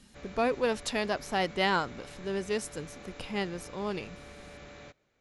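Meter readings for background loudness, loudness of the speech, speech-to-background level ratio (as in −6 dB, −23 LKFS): −48.5 LKFS, −32.0 LKFS, 16.5 dB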